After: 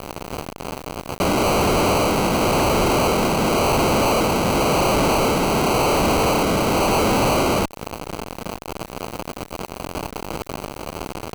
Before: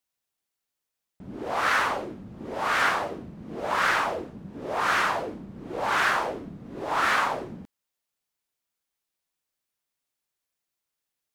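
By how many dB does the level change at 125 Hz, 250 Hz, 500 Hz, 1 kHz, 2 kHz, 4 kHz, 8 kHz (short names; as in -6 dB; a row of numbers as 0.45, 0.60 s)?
+20.0, +17.5, +14.5, +7.0, +0.5, +10.5, +15.5 dB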